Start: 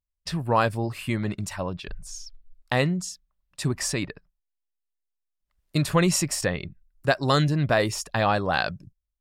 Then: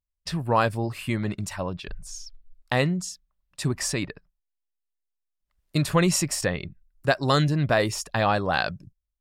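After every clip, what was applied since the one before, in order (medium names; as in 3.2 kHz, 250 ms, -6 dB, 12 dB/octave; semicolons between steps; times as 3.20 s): no audible change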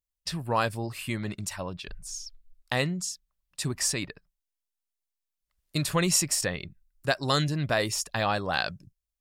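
treble shelf 2.7 kHz +8.5 dB; trim -5.5 dB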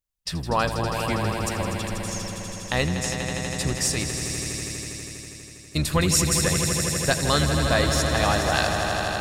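octave divider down 1 oct, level -3 dB; echo with a slow build-up 81 ms, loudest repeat 5, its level -9.5 dB; trim +2.5 dB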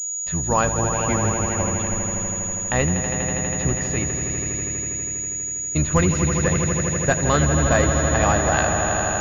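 distance through air 200 m; class-D stage that switches slowly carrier 6.8 kHz; trim +4 dB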